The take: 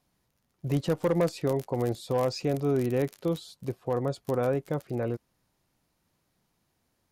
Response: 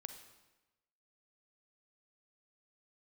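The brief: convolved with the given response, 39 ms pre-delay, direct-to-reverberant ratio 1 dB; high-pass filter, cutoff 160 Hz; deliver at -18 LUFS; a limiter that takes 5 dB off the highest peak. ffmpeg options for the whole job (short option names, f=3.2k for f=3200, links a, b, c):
-filter_complex "[0:a]highpass=160,alimiter=limit=-19.5dB:level=0:latency=1,asplit=2[a][b];[1:a]atrim=start_sample=2205,adelay=39[c];[b][c]afir=irnorm=-1:irlink=0,volume=3dB[d];[a][d]amix=inputs=2:normalize=0,volume=11dB"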